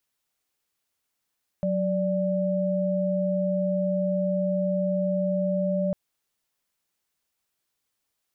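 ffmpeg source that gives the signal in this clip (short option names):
-f lavfi -i "aevalsrc='0.0562*(sin(2*PI*185*t)+sin(2*PI*587.33*t))':d=4.3:s=44100"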